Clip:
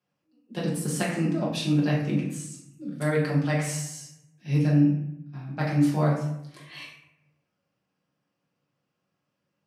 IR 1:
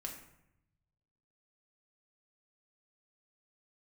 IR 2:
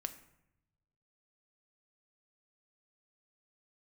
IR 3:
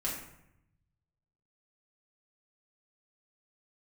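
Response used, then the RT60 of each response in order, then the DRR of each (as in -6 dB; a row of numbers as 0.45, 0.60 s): 3; 0.80, 0.80, 0.80 s; 0.0, 8.0, -6.0 dB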